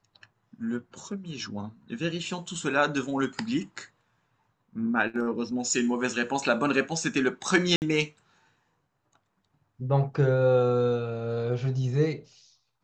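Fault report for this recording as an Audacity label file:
7.760000	7.820000	drop-out 59 ms

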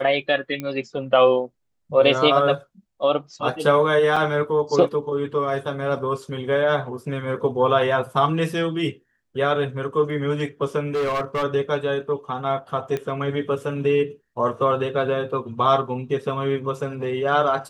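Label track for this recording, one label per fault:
0.600000	0.600000	click −15 dBFS
4.160000	4.170000	drop-out 5.2 ms
10.940000	11.440000	clipping −20 dBFS
12.970000	12.970000	click −15 dBFS

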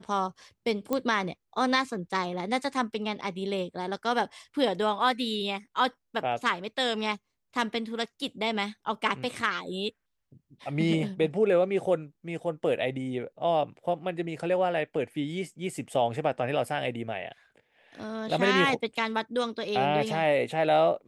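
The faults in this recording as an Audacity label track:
0.930000	0.930000	click −15 dBFS

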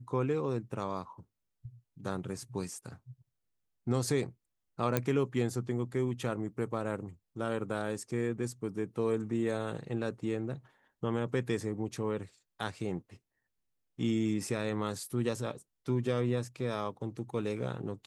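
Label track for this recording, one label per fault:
4.970000	4.970000	click −13 dBFS

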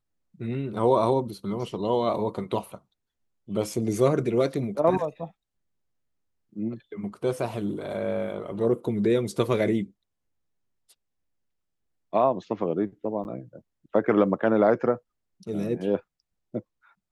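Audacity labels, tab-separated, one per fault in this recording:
13.240000	13.250000	drop-out 9.7 ms

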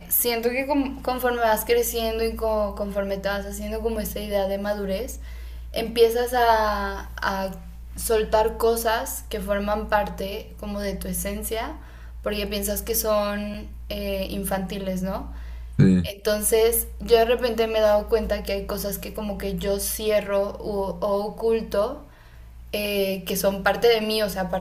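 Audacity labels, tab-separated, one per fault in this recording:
13.540000	13.550000	drop-out 5.6 ms

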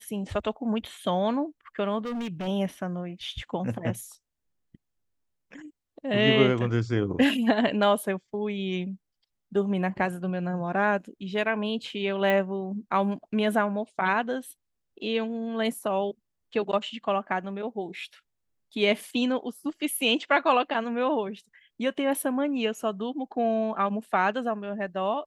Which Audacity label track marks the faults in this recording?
1.990000	2.480000	clipping −29 dBFS
12.300000	12.300000	click −14 dBFS

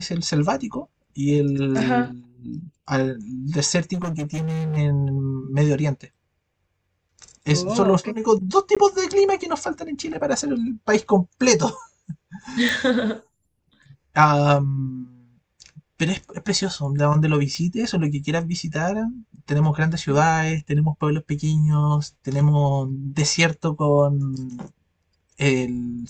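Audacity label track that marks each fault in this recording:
3.930000	4.780000	clipping −23 dBFS
8.750000	8.770000	drop-out 16 ms
12.690000	12.690000	click
17.550000	17.550000	click −18 dBFS

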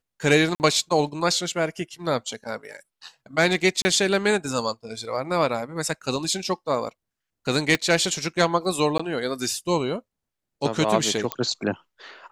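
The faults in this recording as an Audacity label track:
0.550000	0.600000	drop-out 49 ms
3.820000	3.850000	drop-out 30 ms
7.750000	7.750000	click −9 dBFS
8.980000	8.990000	drop-out 15 ms
11.320000	11.320000	click −8 dBFS

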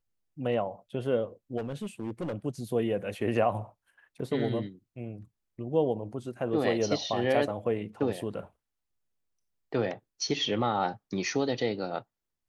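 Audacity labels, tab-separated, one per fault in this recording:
1.570000	2.340000	clipping −29.5 dBFS

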